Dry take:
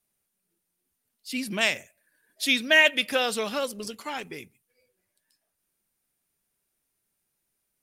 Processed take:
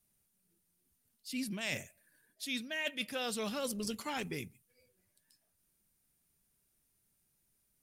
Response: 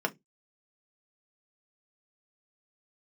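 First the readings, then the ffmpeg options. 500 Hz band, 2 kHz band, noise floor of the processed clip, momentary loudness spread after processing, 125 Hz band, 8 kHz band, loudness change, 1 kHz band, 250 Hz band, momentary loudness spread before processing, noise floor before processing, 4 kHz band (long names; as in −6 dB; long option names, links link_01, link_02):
−12.0 dB, −16.5 dB, −78 dBFS, 8 LU, can't be measured, −7.0 dB, −14.0 dB, −11.0 dB, −6.0 dB, 18 LU, −80 dBFS, −13.5 dB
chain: -af "bass=frequency=250:gain=10,treble=frequency=4000:gain=4,areverse,acompressor=threshold=-31dB:ratio=16,areverse,volume=-2.5dB"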